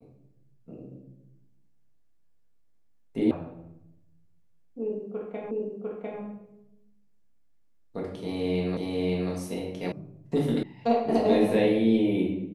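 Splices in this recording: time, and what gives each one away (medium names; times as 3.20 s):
3.31 s: sound stops dead
5.51 s: repeat of the last 0.7 s
8.77 s: repeat of the last 0.54 s
9.92 s: sound stops dead
10.63 s: sound stops dead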